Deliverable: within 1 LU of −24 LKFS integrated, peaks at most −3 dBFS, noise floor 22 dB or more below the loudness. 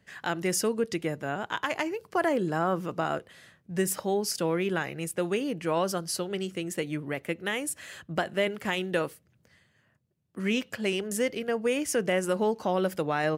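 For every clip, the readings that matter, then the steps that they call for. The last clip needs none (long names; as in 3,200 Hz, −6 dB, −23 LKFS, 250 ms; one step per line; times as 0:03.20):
integrated loudness −29.5 LKFS; sample peak −14.5 dBFS; target loudness −24.0 LKFS
→ level +5.5 dB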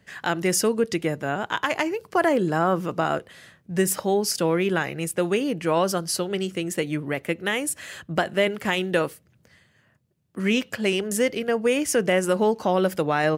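integrated loudness −24.0 LKFS; sample peak −9.0 dBFS; background noise floor −62 dBFS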